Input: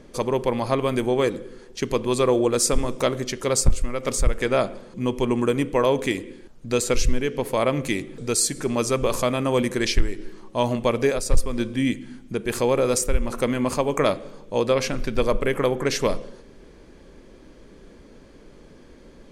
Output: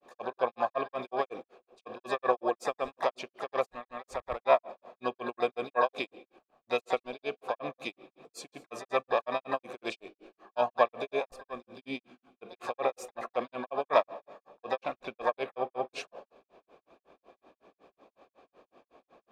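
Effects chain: vowel filter a; harmoniser +7 st -8 dB; grains 0.149 s, grains 5.4/s, pitch spread up and down by 0 st; gain +8 dB

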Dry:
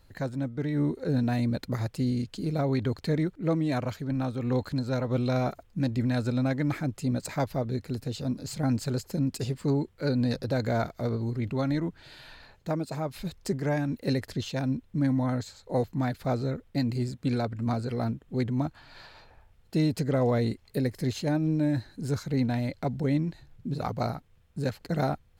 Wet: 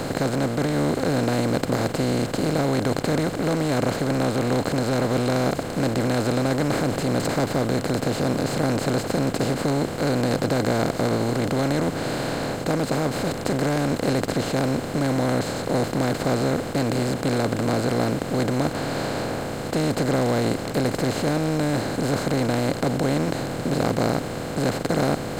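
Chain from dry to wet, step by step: per-bin compression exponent 0.2; 6.63–7.32 transient shaper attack -2 dB, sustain +4 dB; gain -2.5 dB

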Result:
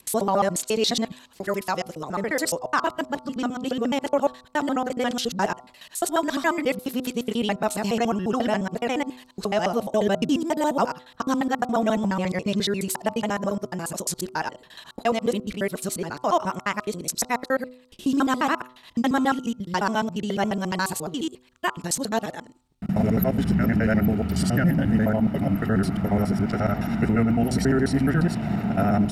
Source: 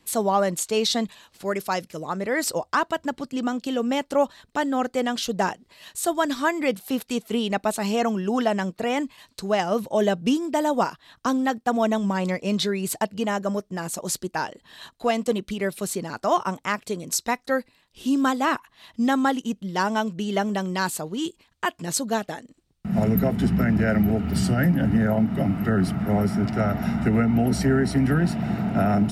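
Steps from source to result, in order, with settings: local time reversal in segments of 70 ms; de-hum 125.9 Hz, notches 11

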